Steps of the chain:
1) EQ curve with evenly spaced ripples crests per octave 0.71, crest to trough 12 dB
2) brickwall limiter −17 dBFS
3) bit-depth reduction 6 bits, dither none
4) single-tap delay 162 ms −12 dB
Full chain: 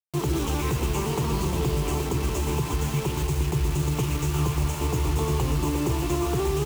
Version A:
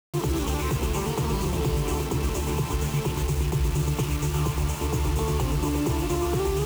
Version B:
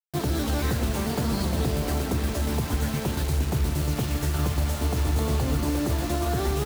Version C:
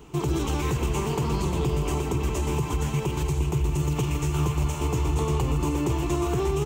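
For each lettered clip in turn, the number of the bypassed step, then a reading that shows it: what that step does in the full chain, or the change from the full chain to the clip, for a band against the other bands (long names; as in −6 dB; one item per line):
4, change in crest factor −1.5 dB
1, 2 kHz band +2.0 dB
3, distortion level −16 dB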